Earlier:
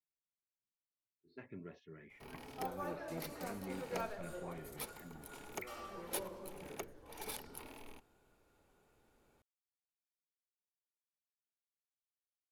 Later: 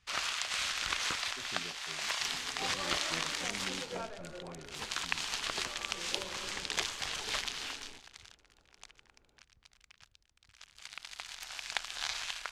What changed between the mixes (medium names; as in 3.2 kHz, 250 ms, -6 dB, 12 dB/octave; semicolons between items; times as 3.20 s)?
first sound: unmuted; master: add distance through air 100 m